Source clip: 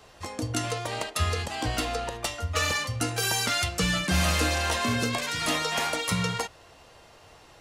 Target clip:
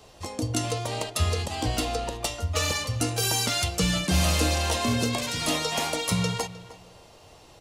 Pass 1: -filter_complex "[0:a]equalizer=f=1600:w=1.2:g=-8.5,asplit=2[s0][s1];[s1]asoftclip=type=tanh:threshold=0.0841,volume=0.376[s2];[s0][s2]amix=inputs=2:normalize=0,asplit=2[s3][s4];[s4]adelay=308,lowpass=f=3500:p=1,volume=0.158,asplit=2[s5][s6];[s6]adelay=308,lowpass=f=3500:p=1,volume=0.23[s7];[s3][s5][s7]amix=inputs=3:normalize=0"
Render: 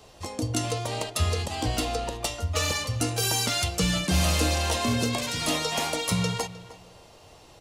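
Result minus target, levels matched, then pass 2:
saturation: distortion +9 dB
-filter_complex "[0:a]equalizer=f=1600:w=1.2:g=-8.5,asplit=2[s0][s1];[s1]asoftclip=type=tanh:threshold=0.168,volume=0.376[s2];[s0][s2]amix=inputs=2:normalize=0,asplit=2[s3][s4];[s4]adelay=308,lowpass=f=3500:p=1,volume=0.158,asplit=2[s5][s6];[s6]adelay=308,lowpass=f=3500:p=1,volume=0.23[s7];[s3][s5][s7]amix=inputs=3:normalize=0"

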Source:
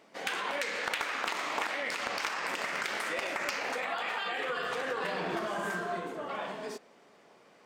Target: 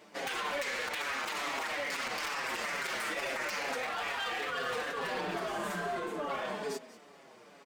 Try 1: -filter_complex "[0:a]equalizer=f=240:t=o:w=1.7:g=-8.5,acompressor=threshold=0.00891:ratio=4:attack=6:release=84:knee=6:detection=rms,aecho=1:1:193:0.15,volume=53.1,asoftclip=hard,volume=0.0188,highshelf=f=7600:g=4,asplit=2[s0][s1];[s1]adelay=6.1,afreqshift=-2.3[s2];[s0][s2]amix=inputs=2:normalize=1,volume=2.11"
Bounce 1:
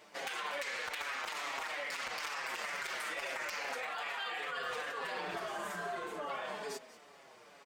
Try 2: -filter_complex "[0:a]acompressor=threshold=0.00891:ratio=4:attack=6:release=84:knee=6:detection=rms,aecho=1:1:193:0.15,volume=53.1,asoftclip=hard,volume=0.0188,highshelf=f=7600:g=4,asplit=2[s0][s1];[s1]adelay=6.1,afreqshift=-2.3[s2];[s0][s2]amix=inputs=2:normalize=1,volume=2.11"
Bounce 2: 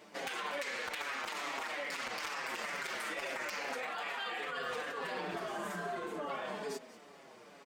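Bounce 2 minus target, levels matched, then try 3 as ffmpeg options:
compression: peak gain reduction +5.5 dB
-filter_complex "[0:a]acompressor=threshold=0.02:ratio=4:attack=6:release=84:knee=6:detection=rms,aecho=1:1:193:0.15,volume=53.1,asoftclip=hard,volume=0.0188,highshelf=f=7600:g=4,asplit=2[s0][s1];[s1]adelay=6.1,afreqshift=-2.3[s2];[s0][s2]amix=inputs=2:normalize=1,volume=2.11"

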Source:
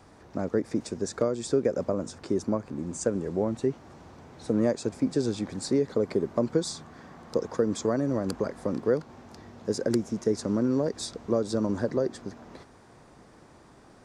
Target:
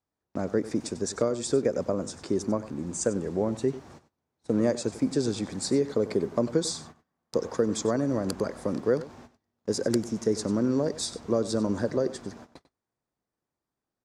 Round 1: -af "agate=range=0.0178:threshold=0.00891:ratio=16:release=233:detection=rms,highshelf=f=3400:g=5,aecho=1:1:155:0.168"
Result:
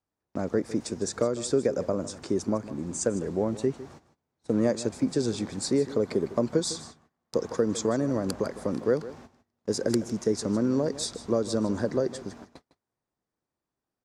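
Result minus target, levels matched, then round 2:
echo 59 ms late
-af "agate=range=0.0178:threshold=0.00891:ratio=16:release=233:detection=rms,highshelf=f=3400:g=5,aecho=1:1:96:0.168"

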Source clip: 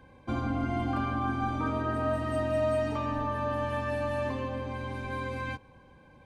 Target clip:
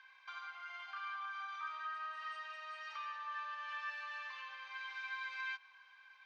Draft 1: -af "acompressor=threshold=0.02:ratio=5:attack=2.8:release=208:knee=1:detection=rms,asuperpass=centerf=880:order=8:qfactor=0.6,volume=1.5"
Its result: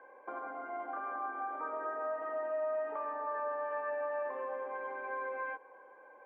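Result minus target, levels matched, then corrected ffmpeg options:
2 kHz band -7.0 dB
-af "acompressor=threshold=0.02:ratio=5:attack=2.8:release=208:knee=1:detection=rms,asuperpass=centerf=2700:order=8:qfactor=0.6,volume=1.5"

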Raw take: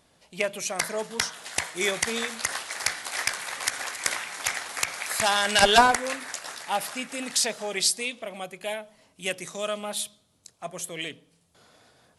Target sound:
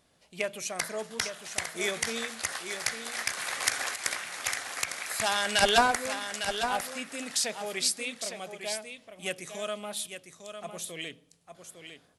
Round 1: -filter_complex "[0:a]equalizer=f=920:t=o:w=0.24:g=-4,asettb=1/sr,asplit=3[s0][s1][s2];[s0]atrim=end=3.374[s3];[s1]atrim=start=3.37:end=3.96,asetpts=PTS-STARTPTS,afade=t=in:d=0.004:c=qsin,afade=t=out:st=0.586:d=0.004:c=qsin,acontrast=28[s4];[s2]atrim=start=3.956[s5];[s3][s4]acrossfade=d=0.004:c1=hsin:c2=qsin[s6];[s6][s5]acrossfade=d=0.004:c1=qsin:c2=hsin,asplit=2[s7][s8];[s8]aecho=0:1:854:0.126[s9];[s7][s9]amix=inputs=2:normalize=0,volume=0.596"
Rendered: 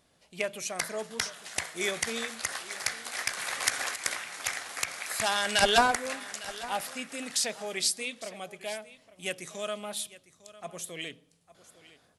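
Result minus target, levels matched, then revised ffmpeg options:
echo-to-direct -9.5 dB
-filter_complex "[0:a]equalizer=f=920:t=o:w=0.24:g=-4,asettb=1/sr,asplit=3[s0][s1][s2];[s0]atrim=end=3.374[s3];[s1]atrim=start=3.37:end=3.96,asetpts=PTS-STARTPTS,afade=t=in:d=0.004:c=qsin,afade=t=out:st=0.586:d=0.004:c=qsin,acontrast=28[s4];[s2]atrim=start=3.956[s5];[s3][s4]acrossfade=d=0.004:c1=hsin:c2=qsin[s6];[s6][s5]acrossfade=d=0.004:c1=qsin:c2=hsin,asplit=2[s7][s8];[s8]aecho=0:1:854:0.376[s9];[s7][s9]amix=inputs=2:normalize=0,volume=0.596"

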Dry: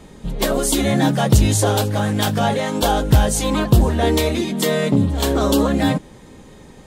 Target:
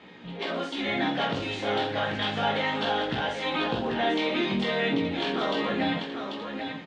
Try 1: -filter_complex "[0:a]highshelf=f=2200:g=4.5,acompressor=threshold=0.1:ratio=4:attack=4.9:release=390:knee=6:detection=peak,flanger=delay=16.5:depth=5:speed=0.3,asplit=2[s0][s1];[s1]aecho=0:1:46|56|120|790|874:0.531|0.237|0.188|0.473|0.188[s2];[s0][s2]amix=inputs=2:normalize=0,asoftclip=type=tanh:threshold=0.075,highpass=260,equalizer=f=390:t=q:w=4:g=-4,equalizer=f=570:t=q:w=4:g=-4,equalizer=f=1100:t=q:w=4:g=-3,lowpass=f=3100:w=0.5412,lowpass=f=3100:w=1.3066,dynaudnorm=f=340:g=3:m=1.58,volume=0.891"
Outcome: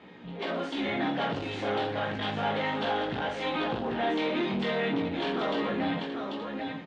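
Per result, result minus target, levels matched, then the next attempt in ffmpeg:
saturation: distortion +13 dB; 4 kHz band -3.0 dB
-filter_complex "[0:a]highshelf=f=2200:g=4.5,acompressor=threshold=0.1:ratio=4:attack=4.9:release=390:knee=6:detection=peak,flanger=delay=16.5:depth=5:speed=0.3,asplit=2[s0][s1];[s1]aecho=0:1:46|56|120|790|874:0.531|0.237|0.188|0.473|0.188[s2];[s0][s2]amix=inputs=2:normalize=0,asoftclip=type=tanh:threshold=0.237,highpass=260,equalizer=f=390:t=q:w=4:g=-4,equalizer=f=570:t=q:w=4:g=-4,equalizer=f=1100:t=q:w=4:g=-3,lowpass=f=3100:w=0.5412,lowpass=f=3100:w=1.3066,dynaudnorm=f=340:g=3:m=1.58,volume=0.891"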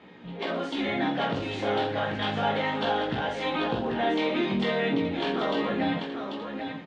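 4 kHz band -3.0 dB
-filter_complex "[0:a]highshelf=f=2200:g=12,acompressor=threshold=0.1:ratio=4:attack=4.9:release=390:knee=6:detection=peak,flanger=delay=16.5:depth=5:speed=0.3,asplit=2[s0][s1];[s1]aecho=0:1:46|56|120|790|874:0.531|0.237|0.188|0.473|0.188[s2];[s0][s2]amix=inputs=2:normalize=0,asoftclip=type=tanh:threshold=0.237,highpass=260,equalizer=f=390:t=q:w=4:g=-4,equalizer=f=570:t=q:w=4:g=-4,equalizer=f=1100:t=q:w=4:g=-3,lowpass=f=3100:w=0.5412,lowpass=f=3100:w=1.3066,dynaudnorm=f=340:g=3:m=1.58,volume=0.891"

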